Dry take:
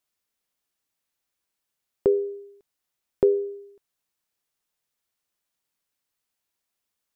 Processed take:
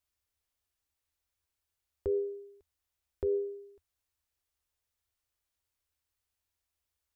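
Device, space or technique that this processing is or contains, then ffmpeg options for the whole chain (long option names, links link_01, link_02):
car stereo with a boomy subwoofer: -af "lowshelf=frequency=110:width_type=q:width=3:gain=11,alimiter=limit=-19dB:level=0:latency=1:release=70,volume=-4.5dB"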